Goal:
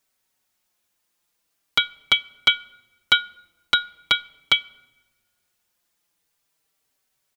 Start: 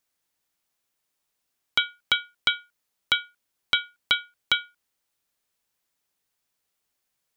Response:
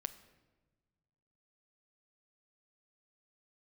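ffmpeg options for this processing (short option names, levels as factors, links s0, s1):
-filter_complex "[0:a]asplit=2[s0][s1];[1:a]atrim=start_sample=2205[s2];[s1][s2]afir=irnorm=-1:irlink=0,volume=0.531[s3];[s0][s3]amix=inputs=2:normalize=0,asplit=2[s4][s5];[s5]adelay=4.8,afreqshift=-0.42[s6];[s4][s6]amix=inputs=2:normalize=1,volume=1.78"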